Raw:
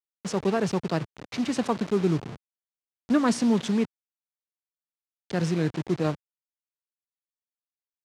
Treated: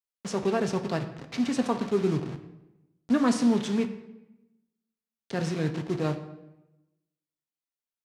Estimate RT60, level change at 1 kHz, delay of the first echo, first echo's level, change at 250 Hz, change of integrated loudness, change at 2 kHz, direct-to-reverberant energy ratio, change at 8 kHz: 0.95 s, -1.5 dB, none, none, -1.0 dB, -1.5 dB, -1.5 dB, 6.0 dB, -2.0 dB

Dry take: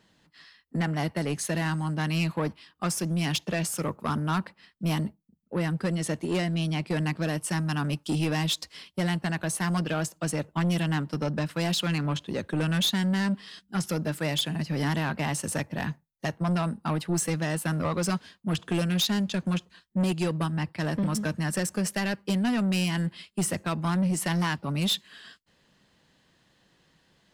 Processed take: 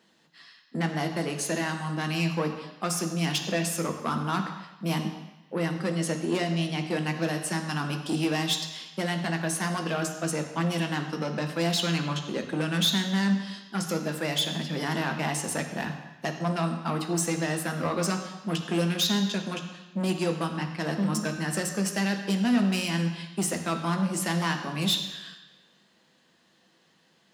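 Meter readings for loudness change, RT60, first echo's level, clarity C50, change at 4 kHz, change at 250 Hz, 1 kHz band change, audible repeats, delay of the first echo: 0.0 dB, 1.1 s, none, 7.5 dB, +2.0 dB, -0.5 dB, +1.5 dB, none, none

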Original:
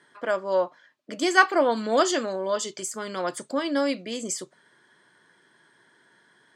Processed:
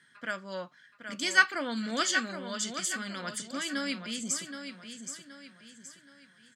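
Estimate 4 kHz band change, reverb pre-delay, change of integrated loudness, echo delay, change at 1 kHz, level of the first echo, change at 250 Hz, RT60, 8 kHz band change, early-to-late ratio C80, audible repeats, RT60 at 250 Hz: -0.5 dB, none, -6.0 dB, 0.773 s, -10.5 dB, -8.5 dB, -6.5 dB, none, -0.5 dB, none, 4, none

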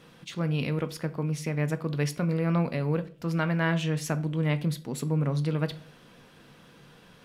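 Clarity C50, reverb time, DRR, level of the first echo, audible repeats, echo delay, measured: 17.5 dB, 0.45 s, 10.0 dB, none, none, none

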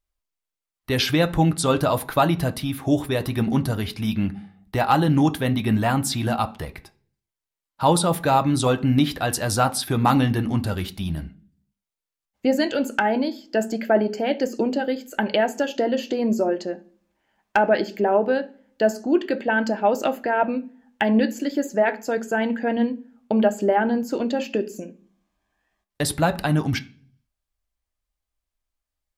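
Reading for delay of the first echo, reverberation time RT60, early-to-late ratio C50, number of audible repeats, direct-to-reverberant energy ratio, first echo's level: none, 0.45 s, 18.5 dB, none, 7.5 dB, none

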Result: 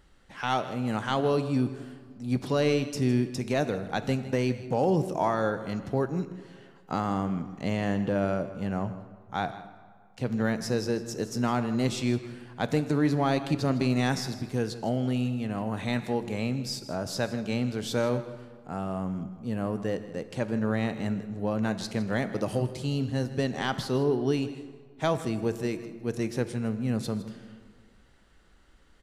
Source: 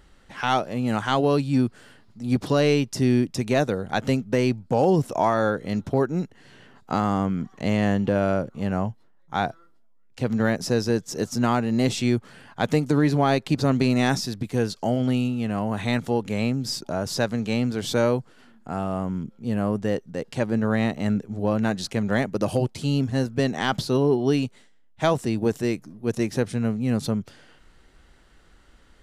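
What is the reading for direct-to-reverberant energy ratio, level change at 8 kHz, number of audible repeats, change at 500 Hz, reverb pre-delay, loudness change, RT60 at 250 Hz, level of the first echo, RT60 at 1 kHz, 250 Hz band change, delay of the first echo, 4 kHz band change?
10.0 dB, -5.0 dB, 1, -5.0 dB, 3 ms, -5.0 dB, 1.9 s, -16.0 dB, 1.8 s, -5.0 dB, 0.159 s, -5.0 dB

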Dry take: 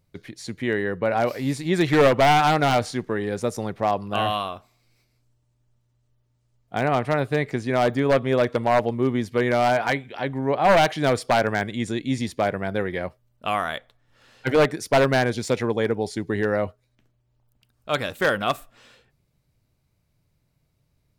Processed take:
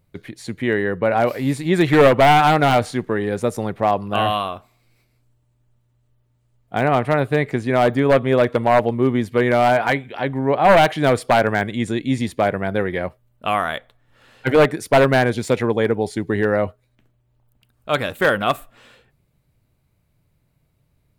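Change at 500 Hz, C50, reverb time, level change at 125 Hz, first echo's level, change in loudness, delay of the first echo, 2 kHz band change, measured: +4.5 dB, none, none, +4.5 dB, none, +4.5 dB, none, +4.0 dB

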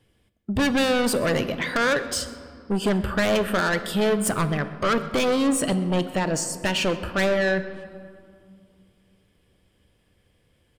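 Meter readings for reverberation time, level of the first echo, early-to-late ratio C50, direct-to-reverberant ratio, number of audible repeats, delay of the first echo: 2.3 s, -22.0 dB, 12.0 dB, 10.0 dB, 1, 0.129 s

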